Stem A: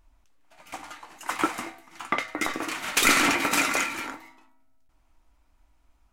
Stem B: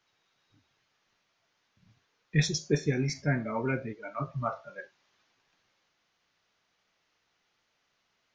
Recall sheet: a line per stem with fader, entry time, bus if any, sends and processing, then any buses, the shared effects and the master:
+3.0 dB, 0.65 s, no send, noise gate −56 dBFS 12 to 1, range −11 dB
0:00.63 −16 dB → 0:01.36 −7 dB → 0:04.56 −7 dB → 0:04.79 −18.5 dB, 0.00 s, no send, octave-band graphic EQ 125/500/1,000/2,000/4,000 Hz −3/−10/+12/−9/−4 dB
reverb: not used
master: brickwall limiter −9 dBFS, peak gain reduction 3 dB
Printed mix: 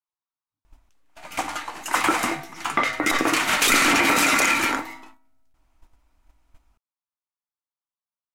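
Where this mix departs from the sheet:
stem A +3.0 dB → +11.5 dB
stem B −16.0 dB → −26.0 dB

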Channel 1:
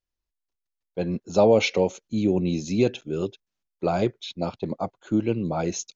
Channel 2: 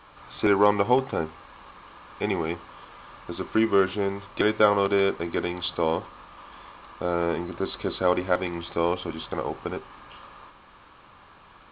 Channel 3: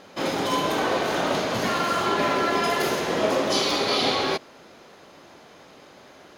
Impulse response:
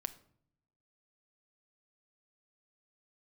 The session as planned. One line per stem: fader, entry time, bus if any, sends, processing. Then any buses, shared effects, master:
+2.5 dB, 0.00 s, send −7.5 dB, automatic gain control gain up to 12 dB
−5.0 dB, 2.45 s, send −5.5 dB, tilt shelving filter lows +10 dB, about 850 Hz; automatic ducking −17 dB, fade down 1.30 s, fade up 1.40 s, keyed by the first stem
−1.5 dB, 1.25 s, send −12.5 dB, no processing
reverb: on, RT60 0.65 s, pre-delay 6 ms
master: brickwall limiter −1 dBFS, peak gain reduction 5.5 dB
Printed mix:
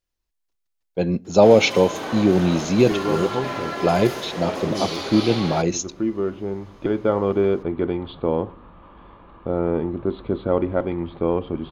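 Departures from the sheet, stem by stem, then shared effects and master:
stem 1: missing automatic gain control gain up to 12 dB
stem 3 −1.5 dB → −7.5 dB

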